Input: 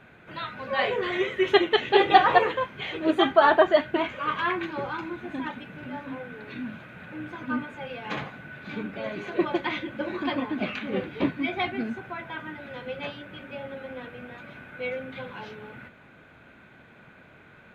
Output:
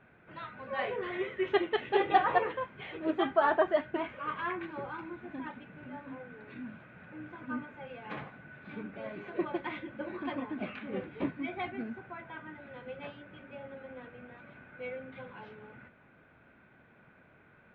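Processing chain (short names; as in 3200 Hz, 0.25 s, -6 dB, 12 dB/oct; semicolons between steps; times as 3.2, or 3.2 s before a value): LPF 2400 Hz 12 dB/oct; gain -8 dB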